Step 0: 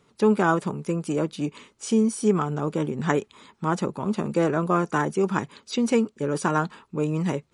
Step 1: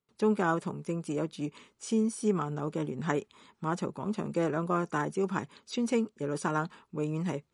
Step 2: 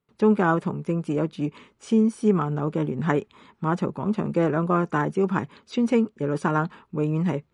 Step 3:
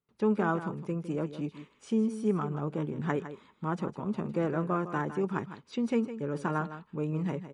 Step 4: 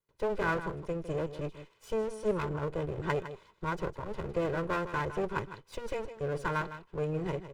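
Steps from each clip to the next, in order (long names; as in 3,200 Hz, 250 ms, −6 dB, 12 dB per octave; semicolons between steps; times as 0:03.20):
noise gate with hold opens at −50 dBFS; level −7 dB
bass and treble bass +3 dB, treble −12 dB; level +6.5 dB
single-tap delay 157 ms −12 dB; level −8 dB
lower of the sound and its delayed copy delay 2 ms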